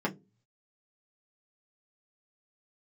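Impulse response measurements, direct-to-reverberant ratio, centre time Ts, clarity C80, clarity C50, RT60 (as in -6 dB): -3.0 dB, 8 ms, 26.0 dB, 21.0 dB, no single decay rate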